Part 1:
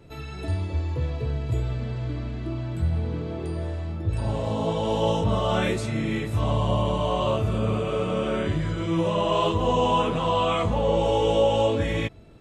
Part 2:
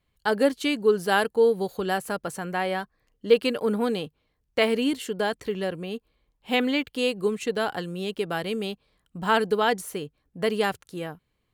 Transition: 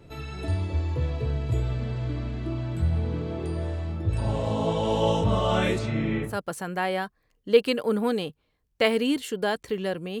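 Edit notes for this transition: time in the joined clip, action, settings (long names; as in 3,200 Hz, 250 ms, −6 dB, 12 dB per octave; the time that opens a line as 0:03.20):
part 1
0:05.78–0:06.38: low-pass filter 5,500 Hz → 1,400 Hz
0:06.30: continue with part 2 from 0:02.07, crossfade 0.16 s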